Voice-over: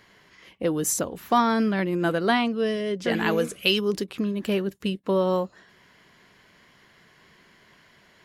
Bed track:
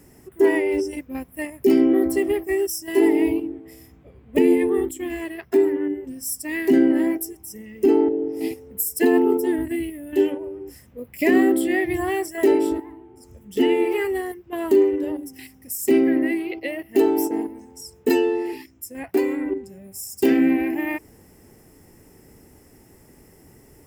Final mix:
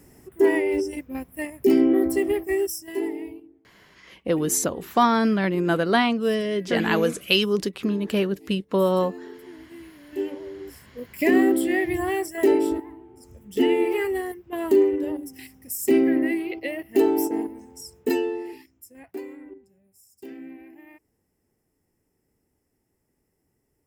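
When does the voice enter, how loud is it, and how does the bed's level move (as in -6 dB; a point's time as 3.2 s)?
3.65 s, +2.0 dB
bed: 2.64 s -1.5 dB
3.53 s -22.5 dB
9.47 s -22.5 dB
10.66 s -1.5 dB
17.81 s -1.5 dB
20.04 s -23 dB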